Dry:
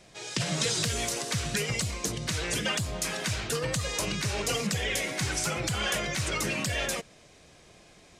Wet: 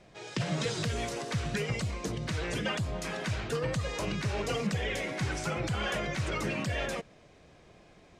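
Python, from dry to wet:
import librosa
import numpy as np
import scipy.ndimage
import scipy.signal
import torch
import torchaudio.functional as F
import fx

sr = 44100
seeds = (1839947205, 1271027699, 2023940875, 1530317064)

y = fx.lowpass(x, sr, hz=1700.0, slope=6)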